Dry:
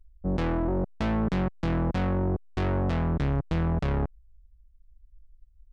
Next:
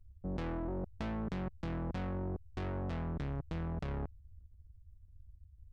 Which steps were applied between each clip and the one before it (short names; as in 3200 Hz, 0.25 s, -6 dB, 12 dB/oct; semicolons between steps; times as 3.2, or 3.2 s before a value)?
level quantiser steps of 18 dB; band noise 45–96 Hz -58 dBFS; gain -1 dB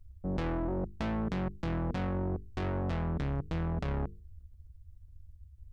notches 50/100/150/200/250/300/350/400/450 Hz; gain +5.5 dB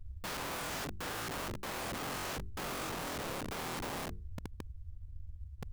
median filter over 41 samples; wrapped overs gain 40.5 dB; gain +6 dB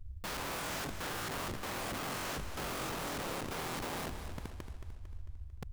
warbling echo 0.224 s, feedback 53%, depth 106 cents, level -9.5 dB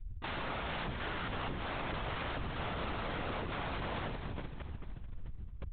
LPC vocoder at 8 kHz whisper; gain +1.5 dB